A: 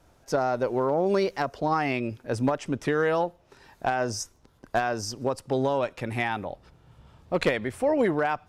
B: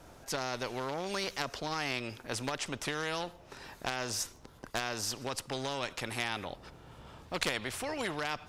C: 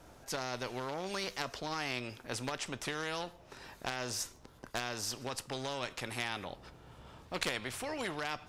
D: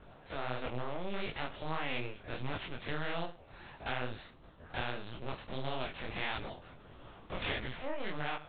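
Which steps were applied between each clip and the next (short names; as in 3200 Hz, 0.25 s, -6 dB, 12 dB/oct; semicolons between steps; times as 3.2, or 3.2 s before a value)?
dynamic EQ 3700 Hz, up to +7 dB, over -45 dBFS, Q 0.71; spectral compressor 2:1; gain -6.5 dB
resonator 62 Hz, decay 0.25 s, harmonics all, mix 40%
stepped spectrum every 50 ms; LPC vocoder at 8 kHz pitch kept; detuned doubles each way 54 cents; gain +5.5 dB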